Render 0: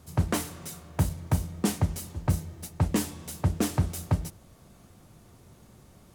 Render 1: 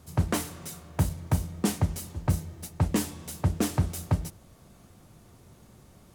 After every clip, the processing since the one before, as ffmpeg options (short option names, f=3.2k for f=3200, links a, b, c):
-af anull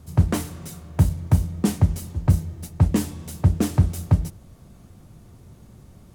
-af "lowshelf=f=280:g=9.5"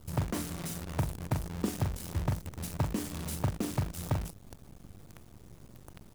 -filter_complex "[0:a]acompressor=threshold=-26dB:ratio=6,asplit=2[a][b];[b]adelay=41,volume=-6dB[c];[a][c]amix=inputs=2:normalize=0,acrusher=bits=7:dc=4:mix=0:aa=0.000001,volume=-2.5dB"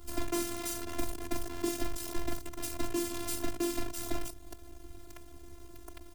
-filter_complex "[0:a]acrossover=split=270|3400[a][b][c];[b]asoftclip=type=hard:threshold=-36.5dB[d];[a][d][c]amix=inputs=3:normalize=0,afftfilt=real='hypot(re,im)*cos(PI*b)':imag='0':win_size=512:overlap=0.75,volume=7dB"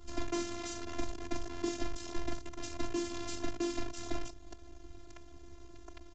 -af "aresample=16000,aresample=44100,volume=-2dB"